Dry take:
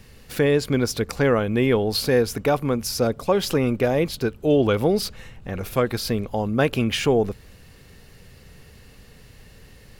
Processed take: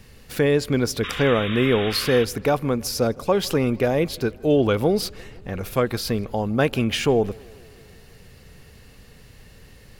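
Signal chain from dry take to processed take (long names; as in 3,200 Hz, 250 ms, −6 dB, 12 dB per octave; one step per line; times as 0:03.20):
sound drawn into the spectrogram noise, 0:01.03–0:02.25, 1,000–3,800 Hz −32 dBFS
on a send: tape delay 159 ms, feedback 73%, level −24 dB, low-pass 3,800 Hz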